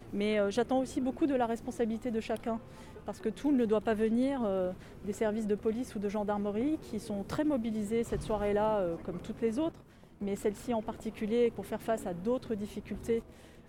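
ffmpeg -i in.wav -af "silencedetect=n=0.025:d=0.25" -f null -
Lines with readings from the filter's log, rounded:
silence_start: 2.57
silence_end: 3.08 | silence_duration: 0.51
silence_start: 4.71
silence_end: 5.08 | silence_duration: 0.36
silence_start: 9.69
silence_end: 10.22 | silence_duration: 0.53
silence_start: 13.19
silence_end: 13.69 | silence_duration: 0.49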